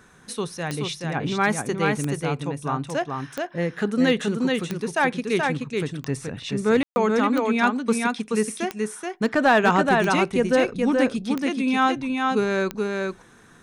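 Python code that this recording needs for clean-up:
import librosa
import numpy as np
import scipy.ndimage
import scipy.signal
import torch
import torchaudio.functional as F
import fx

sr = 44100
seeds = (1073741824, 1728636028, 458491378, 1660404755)

y = fx.fix_declip(x, sr, threshold_db=-10.0)
y = fx.fix_declick_ar(y, sr, threshold=10.0)
y = fx.fix_ambience(y, sr, seeds[0], print_start_s=13.11, print_end_s=13.61, start_s=6.83, end_s=6.96)
y = fx.fix_echo_inverse(y, sr, delay_ms=428, level_db=-3.5)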